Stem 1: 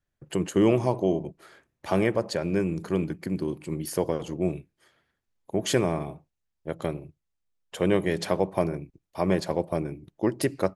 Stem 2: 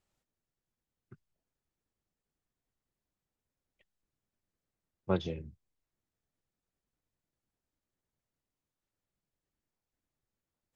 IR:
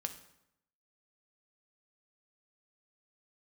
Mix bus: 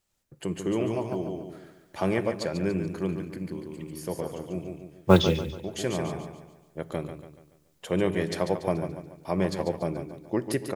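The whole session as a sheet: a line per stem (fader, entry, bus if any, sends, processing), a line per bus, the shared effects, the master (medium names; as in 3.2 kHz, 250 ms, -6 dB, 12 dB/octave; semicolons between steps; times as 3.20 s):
-5.5 dB, 0.10 s, send -6.5 dB, echo send -6 dB, auto duck -12 dB, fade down 0.90 s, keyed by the second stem
-2.0 dB, 0.00 s, send -6.5 dB, echo send -10 dB, treble shelf 3.4 kHz +8.5 dB; level rider gain up to 12.5 dB; modulation noise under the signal 29 dB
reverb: on, RT60 0.80 s, pre-delay 3 ms
echo: feedback delay 143 ms, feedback 43%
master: none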